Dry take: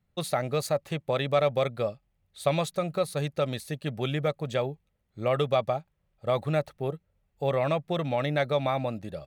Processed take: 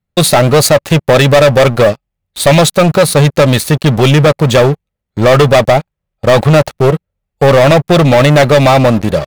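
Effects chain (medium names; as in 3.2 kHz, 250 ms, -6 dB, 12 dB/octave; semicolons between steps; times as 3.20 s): waveshaping leveller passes 5; trim +8 dB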